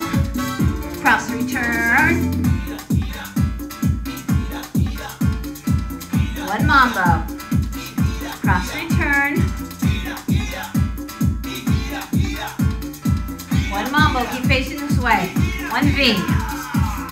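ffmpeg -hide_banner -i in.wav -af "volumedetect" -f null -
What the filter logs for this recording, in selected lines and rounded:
mean_volume: -19.5 dB
max_volume: -1.2 dB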